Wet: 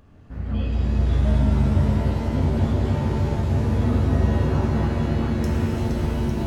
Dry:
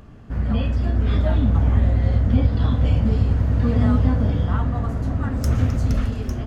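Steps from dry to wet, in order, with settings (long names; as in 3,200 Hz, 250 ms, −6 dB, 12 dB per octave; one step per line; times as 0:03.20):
reverb with rising layers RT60 3.7 s, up +7 semitones, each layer −2 dB, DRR −1 dB
level −8.5 dB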